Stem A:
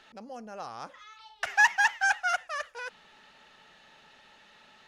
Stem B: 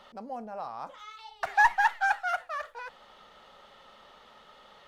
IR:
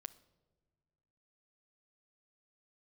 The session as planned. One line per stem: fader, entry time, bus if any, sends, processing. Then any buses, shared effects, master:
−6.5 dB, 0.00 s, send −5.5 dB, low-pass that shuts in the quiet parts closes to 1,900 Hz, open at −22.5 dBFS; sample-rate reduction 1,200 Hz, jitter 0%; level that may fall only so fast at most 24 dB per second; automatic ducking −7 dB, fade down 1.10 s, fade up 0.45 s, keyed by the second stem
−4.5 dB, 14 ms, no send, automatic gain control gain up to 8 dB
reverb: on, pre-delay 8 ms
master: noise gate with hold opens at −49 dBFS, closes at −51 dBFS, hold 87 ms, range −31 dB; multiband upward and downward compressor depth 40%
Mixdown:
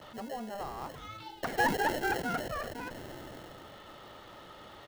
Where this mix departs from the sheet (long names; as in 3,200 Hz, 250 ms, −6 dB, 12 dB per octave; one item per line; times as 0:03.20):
stem B: missing automatic gain control gain up to 8 dB
master: missing noise gate with hold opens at −49 dBFS, closes at −51 dBFS, hold 87 ms, range −31 dB